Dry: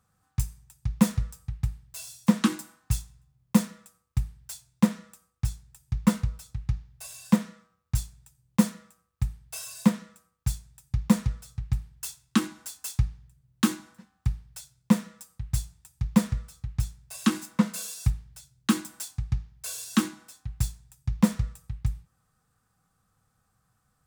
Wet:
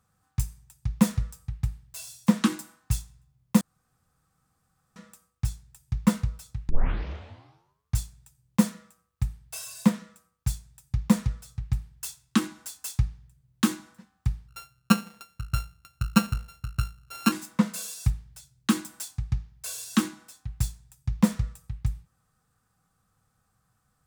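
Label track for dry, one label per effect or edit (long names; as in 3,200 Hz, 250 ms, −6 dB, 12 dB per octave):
3.610000	4.960000	fill with room tone
6.690000	6.690000	tape start 1.30 s
14.480000	17.320000	samples sorted by size in blocks of 32 samples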